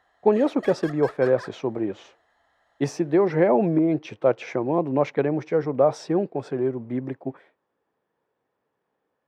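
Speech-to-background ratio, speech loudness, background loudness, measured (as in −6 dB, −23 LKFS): 18.5 dB, −23.5 LKFS, −42.0 LKFS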